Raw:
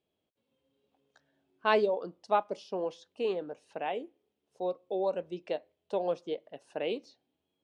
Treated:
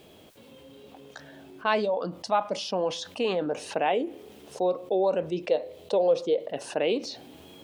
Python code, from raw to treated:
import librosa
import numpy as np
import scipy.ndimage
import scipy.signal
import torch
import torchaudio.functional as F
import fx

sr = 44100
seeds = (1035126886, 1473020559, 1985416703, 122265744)

y = fx.graphic_eq_31(x, sr, hz=(500, 1600, 4000), db=(10, -5, 5), at=(5.47, 6.5))
y = fx.rider(y, sr, range_db=4, speed_s=2.0)
y = fx.peak_eq(y, sr, hz=390.0, db=-11.0, octaves=0.43, at=(1.66, 3.46))
y = fx.env_flatten(y, sr, amount_pct=50)